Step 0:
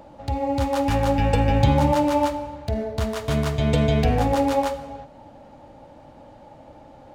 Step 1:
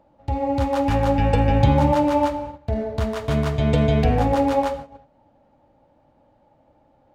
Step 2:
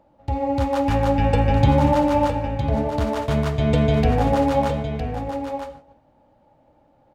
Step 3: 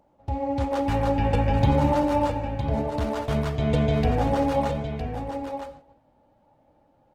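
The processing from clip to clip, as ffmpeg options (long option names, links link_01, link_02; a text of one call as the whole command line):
ffmpeg -i in.wav -af "agate=range=-14dB:threshold=-33dB:ratio=16:detection=peak,highshelf=frequency=4000:gain=-8.5,volume=1.5dB" out.wav
ffmpeg -i in.wav -af "aecho=1:1:960:0.376" out.wav
ffmpeg -i in.wav -af "volume=-4dB" -ar 48000 -c:a libopus -b:a 16k out.opus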